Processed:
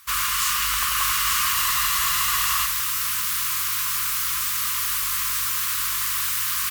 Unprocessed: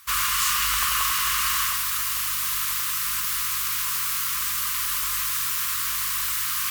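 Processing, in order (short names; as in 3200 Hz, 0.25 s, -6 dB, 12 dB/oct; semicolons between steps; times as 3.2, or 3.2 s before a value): echo 0.89 s -4 dB; spectral freeze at 1.56, 1.09 s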